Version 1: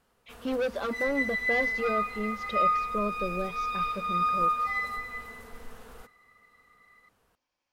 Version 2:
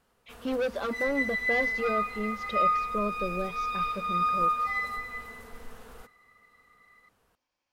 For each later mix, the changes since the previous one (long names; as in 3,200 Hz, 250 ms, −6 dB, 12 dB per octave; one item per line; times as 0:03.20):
nothing changed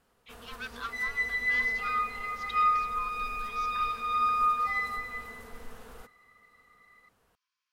speech: add Chebyshev high-pass with heavy ripple 1,000 Hz, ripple 3 dB